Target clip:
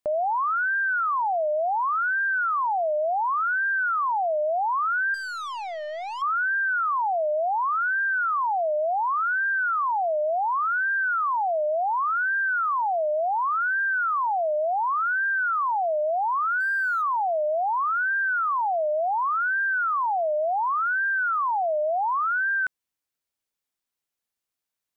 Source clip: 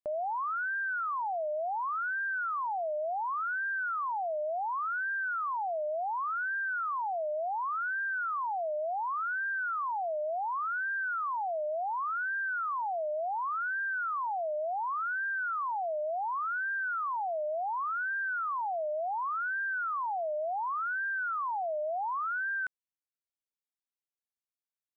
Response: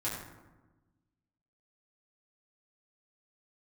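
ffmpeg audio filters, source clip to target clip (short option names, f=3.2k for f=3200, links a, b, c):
-filter_complex "[0:a]asettb=1/sr,asplit=3[a][b][c];[a]atrim=end=5.144[d];[b]atrim=start=5.14:end=6.22,asetpts=PTS-STARTPTS,afade=t=in:d=0.004:c=qsin,afade=t=out:st=1.076:d=0.004:c=qsin,aeval=exprs='(tanh(100*val(0)+0.1)-tanh(0.1))/100':c=same[e];[c]atrim=start=6.216[f];[d][e]acrossfade=d=0.004:c1=hsin:c2=qsin[g];[g][f]acrossfade=d=0.004:c1=qsin:c2=hsin,asettb=1/sr,asplit=3[h][i][j];[h]atrim=end=16.604[k];[i]atrim=start=16.6:end=17.02,asetpts=PTS-STARTPTS,afade=t=in:d=0.004:c=qsin,afade=t=out:st=0.416:d=0.004:c=qsin,aeval=exprs='sgn(val(0))*max(abs(val(0))-0.00106,0)':c=same[l];[j]atrim=start=17.016[m];[k][l]acrossfade=d=0.004:c1=hsin:c2=qsin[n];[n][m]acrossfade=d=0.004:c1=qsin:c2=hsin,volume=8.5dB"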